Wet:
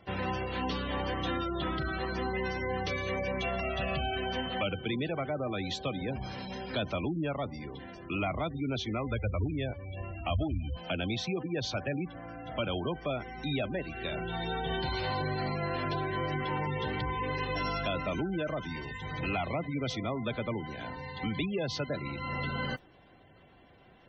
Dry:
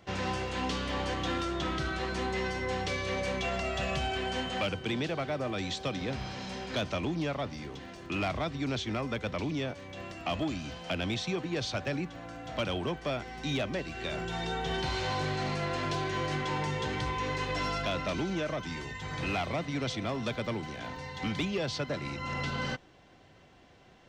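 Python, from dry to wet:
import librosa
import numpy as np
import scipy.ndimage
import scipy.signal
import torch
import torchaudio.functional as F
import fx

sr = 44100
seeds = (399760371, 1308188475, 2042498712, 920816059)

y = fx.mod_noise(x, sr, seeds[0], snr_db=19)
y = fx.low_shelf_res(y, sr, hz=120.0, db=10.0, q=1.5, at=(9.07, 10.77))
y = fx.spec_gate(y, sr, threshold_db=-20, keep='strong')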